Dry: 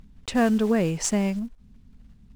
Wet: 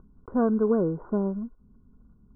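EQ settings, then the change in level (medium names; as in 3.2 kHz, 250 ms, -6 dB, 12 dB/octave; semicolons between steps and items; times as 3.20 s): rippled Chebyshev low-pass 1.5 kHz, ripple 9 dB; +3.0 dB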